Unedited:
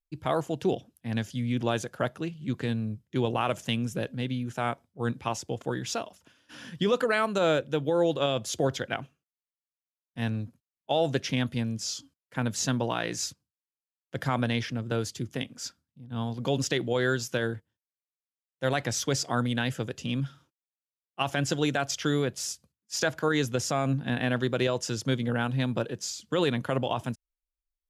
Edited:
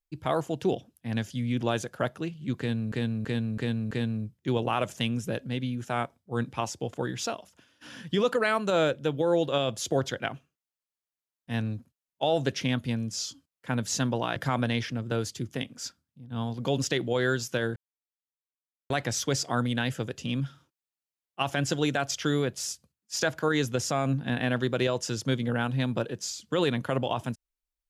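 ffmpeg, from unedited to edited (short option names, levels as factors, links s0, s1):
-filter_complex "[0:a]asplit=8[s0][s1][s2][s3][s4][s5][s6][s7];[s0]atrim=end=2.922[s8];[s1]atrim=start=2.588:end=2.922[s9];[s2]atrim=start=2.588:end=2.922[s10];[s3]atrim=start=2.588:end=2.922[s11];[s4]atrim=start=2.588:end=13.042[s12];[s5]atrim=start=14.158:end=17.56,asetpts=PTS-STARTPTS,afade=t=out:st=3.398:d=0.004:c=hsin[s13];[s6]atrim=start=17.56:end=18.7,asetpts=PTS-STARTPTS,volume=0[s14];[s7]atrim=start=18.7,asetpts=PTS-STARTPTS,afade=t=in:d=0.004:c=hsin[s15];[s8][s9]acrossfade=d=0.004:c1=hsin:c2=hsin[s16];[s16][s10]acrossfade=d=0.004:c1=hsin:c2=hsin[s17];[s17][s11]acrossfade=d=0.004:c1=hsin:c2=hsin[s18];[s18][s12]acrossfade=d=0.004:c1=hsin:c2=hsin[s19];[s13][s14][s15]concat=n=3:v=0:a=1[s20];[s19][s20]acrossfade=d=0.004:c1=hsin:c2=hsin"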